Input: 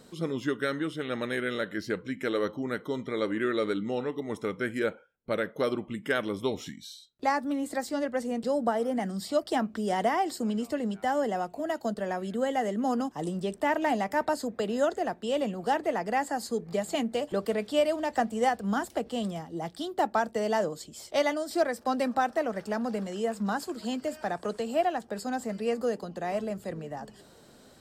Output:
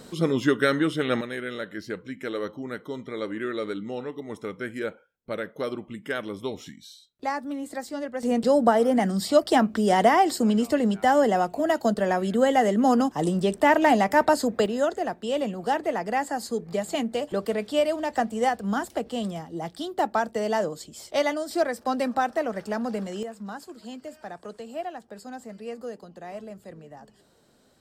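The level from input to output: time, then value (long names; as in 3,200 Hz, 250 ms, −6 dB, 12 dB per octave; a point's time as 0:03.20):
+8 dB
from 0:01.21 −2 dB
from 0:08.23 +8 dB
from 0:14.66 +2 dB
from 0:23.23 −7 dB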